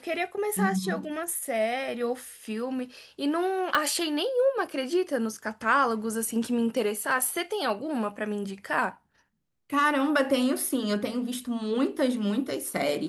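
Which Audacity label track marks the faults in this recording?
3.750000	3.750000	click −11 dBFS

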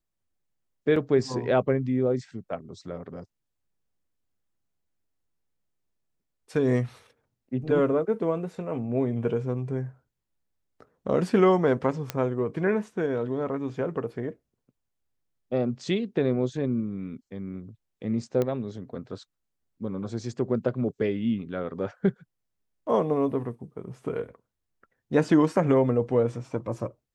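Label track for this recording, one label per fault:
0.960000	0.960000	drop-out 3.7 ms
12.100000	12.100000	click −12 dBFS
18.420000	18.420000	click −15 dBFS

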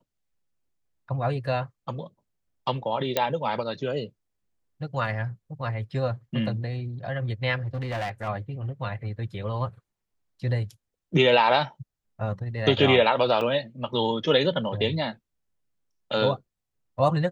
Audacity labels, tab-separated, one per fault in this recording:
3.170000	3.170000	click −8 dBFS
7.640000	8.290000	clipping −26.5 dBFS
13.410000	13.410000	drop-out 3 ms

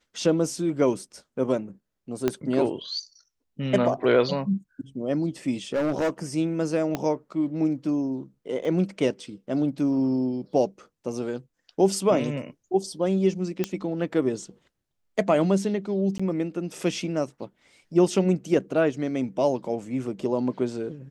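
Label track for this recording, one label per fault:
2.280000	2.280000	click −10 dBFS
5.730000	6.100000	clipping −20.5 dBFS
6.950000	6.950000	click −13 dBFS
8.650000	8.650000	drop-out 2.5 ms
13.640000	13.640000	click −11 dBFS
16.180000	16.200000	drop-out 15 ms

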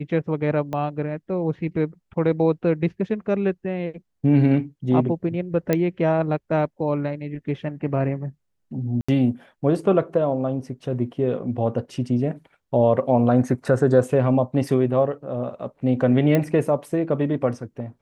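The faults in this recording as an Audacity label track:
0.730000	0.730000	click −17 dBFS
5.730000	5.730000	click −7 dBFS
9.010000	9.090000	drop-out 75 ms
16.350000	16.350000	click −9 dBFS

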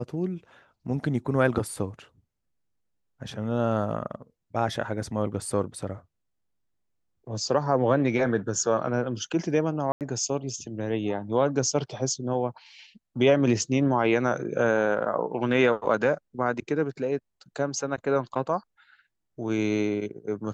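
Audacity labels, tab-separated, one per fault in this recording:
9.920000	10.010000	drop-out 88 ms

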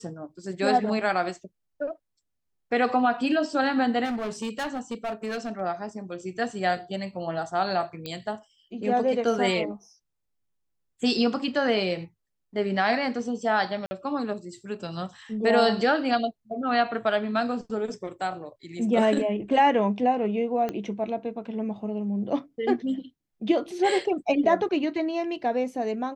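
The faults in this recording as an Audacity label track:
4.040000	5.610000	clipping −26.5 dBFS
8.060000	8.060000	click −20 dBFS
13.860000	13.910000	drop-out 50 ms
20.690000	20.690000	click −17 dBFS

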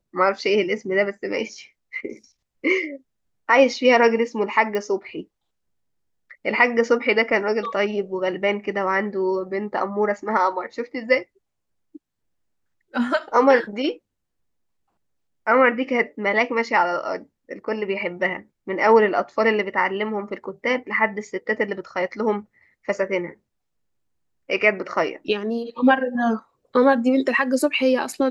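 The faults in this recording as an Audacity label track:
4.750000	4.750000	click −15 dBFS

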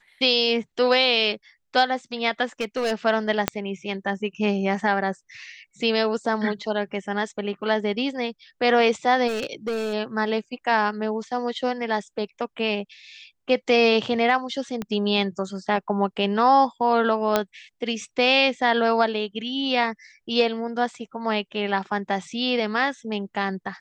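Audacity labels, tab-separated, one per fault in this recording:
2.600000	2.930000	clipping −19 dBFS
3.480000	3.480000	click −4 dBFS
9.270000	9.940000	clipping −22 dBFS
14.820000	14.820000	click −16 dBFS
17.360000	17.360000	click −5 dBFS

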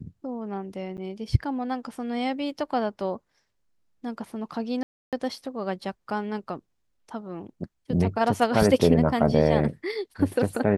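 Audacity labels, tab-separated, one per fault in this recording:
0.970000	0.980000	drop-out 9 ms
4.830000	5.130000	drop-out 297 ms

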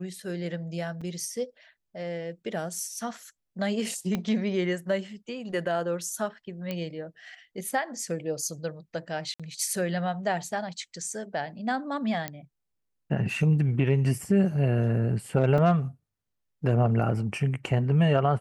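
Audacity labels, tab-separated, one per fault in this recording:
1.010000	1.020000	drop-out 5.1 ms
4.150000	4.150000	click −16 dBFS
6.710000	6.710000	click −18 dBFS
9.340000	9.400000	drop-out 56 ms
12.280000	12.280000	click −15 dBFS
15.580000	15.580000	drop-out 3.4 ms

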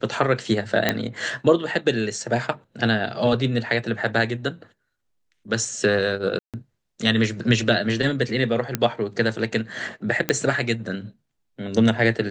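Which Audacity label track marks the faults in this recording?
0.890000	0.890000	click −4 dBFS
6.390000	6.540000	drop-out 147 ms
8.750000	8.750000	click −6 dBFS
10.290000	10.290000	click −5 dBFS

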